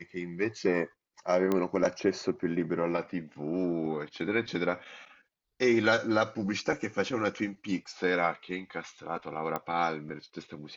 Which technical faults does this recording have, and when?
0:01.52: click −16 dBFS
0:09.56: click −18 dBFS

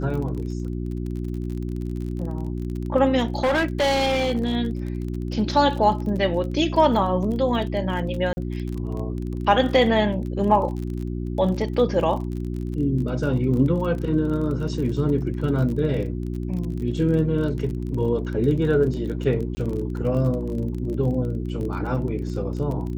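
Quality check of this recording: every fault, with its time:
surface crackle 30 per second −30 dBFS
mains hum 60 Hz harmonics 6 −28 dBFS
0:03.35–0:04.55: clipping −17 dBFS
0:08.33–0:08.37: drop-out 40 ms
0:19.55–0:19.57: drop-out 20 ms

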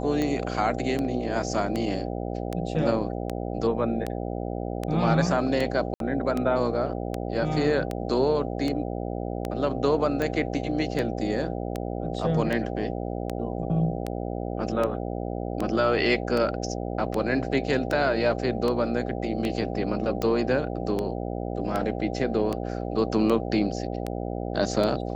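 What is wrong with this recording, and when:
mains buzz 60 Hz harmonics 13 −31 dBFS
scratch tick 78 rpm −15 dBFS
0:05.94–0:06.00: drop-out 62 ms

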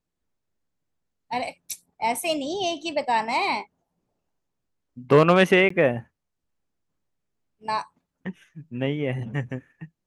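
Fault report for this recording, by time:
0:05.69–0:05.70: drop-out 14 ms

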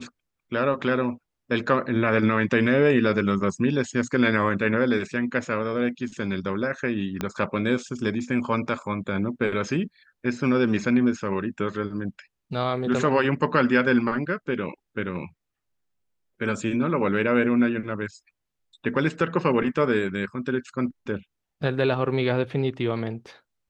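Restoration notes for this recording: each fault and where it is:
0:07.21: click −13 dBFS

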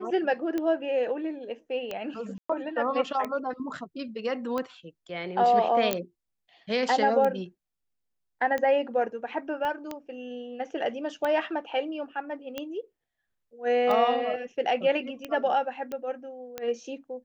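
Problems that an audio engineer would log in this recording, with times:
scratch tick 45 rpm −18 dBFS
0:02.38–0:02.50: drop-out 115 ms
0:05.93: click −9 dBFS
0:09.65: click −21 dBFS
0:15.92: click −22 dBFS

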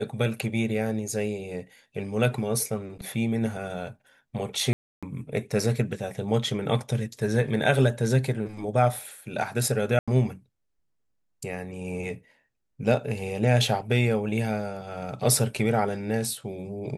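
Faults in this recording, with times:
0:04.73–0:05.03: drop-out 296 ms
0:09.99–0:10.08: drop-out 86 ms

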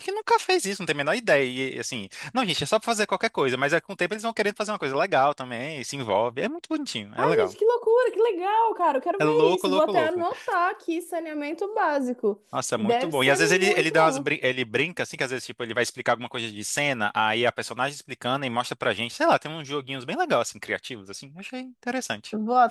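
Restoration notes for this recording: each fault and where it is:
0:00.77: drop-out 2.1 ms

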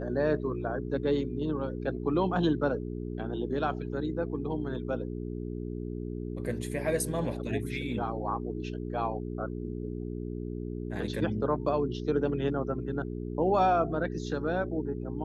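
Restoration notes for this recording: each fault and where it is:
mains hum 60 Hz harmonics 7 −36 dBFS

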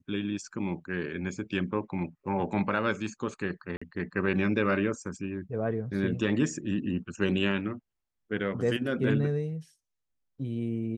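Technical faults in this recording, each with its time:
0:03.77–0:03.81: drop-out 45 ms

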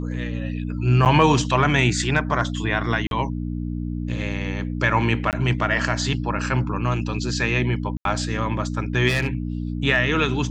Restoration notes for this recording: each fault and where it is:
mains hum 60 Hz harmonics 5 −27 dBFS
0:01.05–0:01.06: drop-out 8.8 ms
0:03.07–0:03.11: drop-out 42 ms
0:05.31–0:05.33: drop-out 18 ms
0:07.97–0:08.05: drop-out 82 ms
0:09.08–0:09.35: clipping −17 dBFS

